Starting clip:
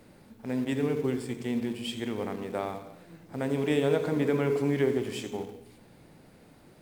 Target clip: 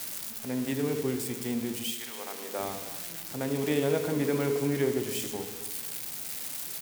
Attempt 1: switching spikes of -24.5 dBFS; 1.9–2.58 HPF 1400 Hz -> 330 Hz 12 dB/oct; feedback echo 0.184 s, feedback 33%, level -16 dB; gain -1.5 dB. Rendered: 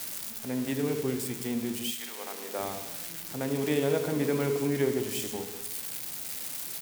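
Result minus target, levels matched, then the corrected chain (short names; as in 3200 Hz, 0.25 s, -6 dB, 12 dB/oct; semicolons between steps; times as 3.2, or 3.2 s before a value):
echo 90 ms early
switching spikes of -24.5 dBFS; 1.9–2.58 HPF 1400 Hz -> 330 Hz 12 dB/oct; feedback echo 0.274 s, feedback 33%, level -16 dB; gain -1.5 dB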